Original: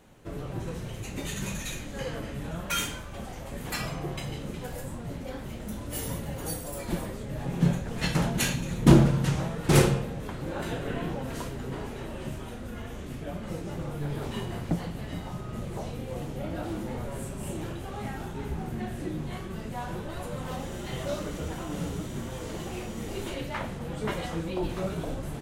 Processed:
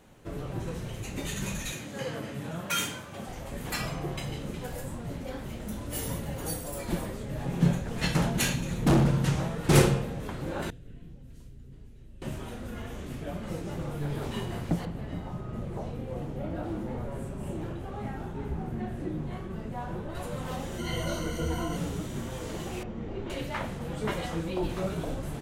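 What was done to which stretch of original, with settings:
0:01.72–0:03.27: high-pass filter 100 Hz 24 dB per octave
0:08.36–0:09.08: gain into a clipping stage and back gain 18 dB
0:10.70–0:12.22: guitar amp tone stack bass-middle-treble 10-0-1
0:14.85–0:20.15: high-shelf EQ 2,300 Hz −11.5 dB
0:20.78–0:21.77: EQ curve with evenly spaced ripples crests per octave 1.9, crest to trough 15 dB
0:22.83–0:23.30: head-to-tape spacing loss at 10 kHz 36 dB

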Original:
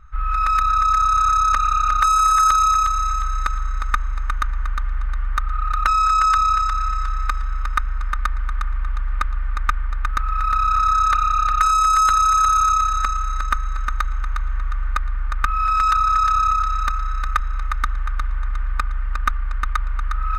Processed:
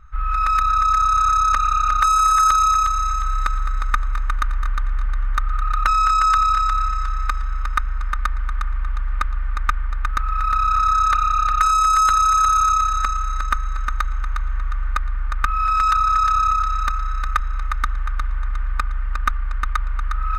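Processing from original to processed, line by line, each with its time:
0:03.05–0:06.87: single-tap delay 211 ms −11 dB

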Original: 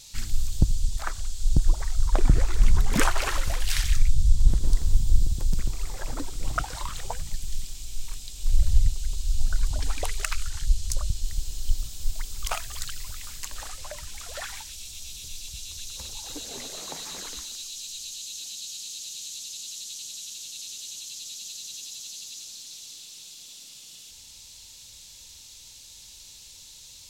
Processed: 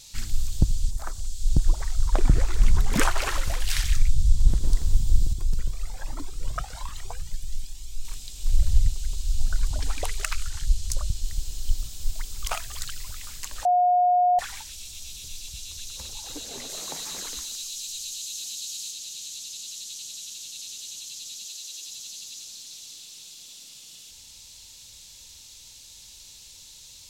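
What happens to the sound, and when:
0:00.90–0:01.47: parametric band 3,500 Hz → 820 Hz −11 dB 1.8 octaves
0:05.33–0:08.05: flanger whose copies keep moving one way rising 1.2 Hz
0:13.65–0:14.39: beep over 718 Hz −16.5 dBFS
0:16.69–0:18.91: high-shelf EQ 5,400 Hz +5 dB
0:21.45–0:21.88: high-pass filter 290 Hz 24 dB per octave

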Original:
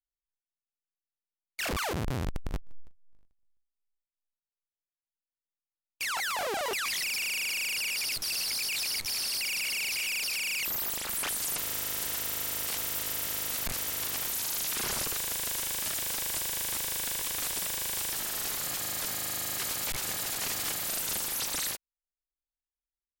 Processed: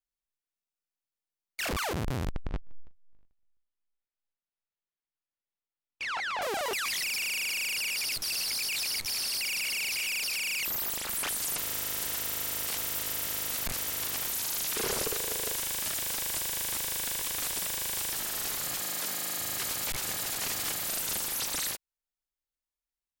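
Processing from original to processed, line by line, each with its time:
0:02.33–0:06.42: low-pass filter 3,500 Hz
0:14.76–0:15.55: parametric band 440 Hz +11.5 dB 0.66 octaves
0:18.81–0:19.39: high-pass filter 150 Hz 24 dB per octave

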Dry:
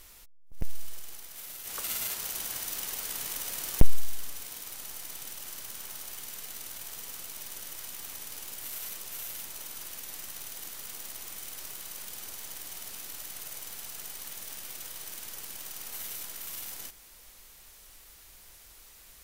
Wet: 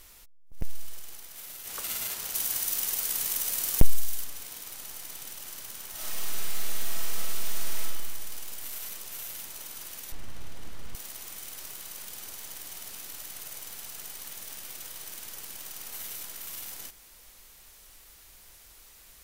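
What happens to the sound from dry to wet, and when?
0:02.34–0:04.24: high-shelf EQ 5,000 Hz +7.5 dB
0:05.91–0:07.81: thrown reverb, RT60 1.8 s, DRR −7.5 dB
0:10.12–0:10.95: RIAA equalisation playback

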